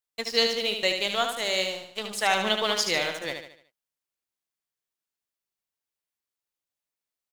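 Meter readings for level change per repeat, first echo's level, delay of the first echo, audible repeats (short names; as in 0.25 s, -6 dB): -7.5 dB, -6.0 dB, 74 ms, 4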